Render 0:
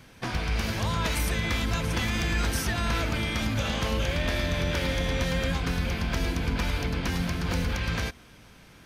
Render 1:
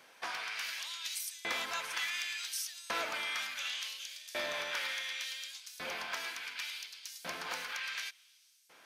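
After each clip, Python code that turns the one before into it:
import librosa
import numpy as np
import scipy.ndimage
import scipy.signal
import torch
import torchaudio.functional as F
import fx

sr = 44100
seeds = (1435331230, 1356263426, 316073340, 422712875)

y = fx.filter_lfo_highpass(x, sr, shape='saw_up', hz=0.69, low_hz=520.0, high_hz=7400.0, q=1.0)
y = y * 10.0 ** (-4.5 / 20.0)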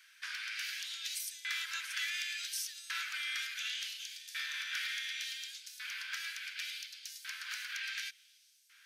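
y = scipy.signal.sosfilt(scipy.signal.cheby1(4, 1.0, 1500.0, 'highpass', fs=sr, output='sos'), x)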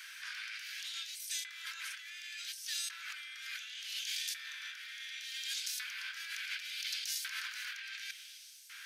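y = fx.over_compress(x, sr, threshold_db=-49.0, ratio=-1.0)
y = y * 10.0 ** (5.5 / 20.0)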